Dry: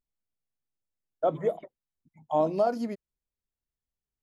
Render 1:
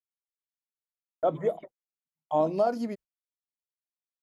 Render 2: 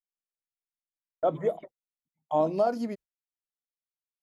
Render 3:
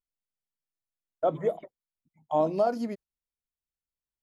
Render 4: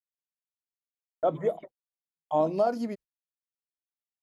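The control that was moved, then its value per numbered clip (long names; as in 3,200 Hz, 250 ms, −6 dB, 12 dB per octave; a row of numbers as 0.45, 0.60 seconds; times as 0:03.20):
noise gate, range: −41, −27, −8, −54 decibels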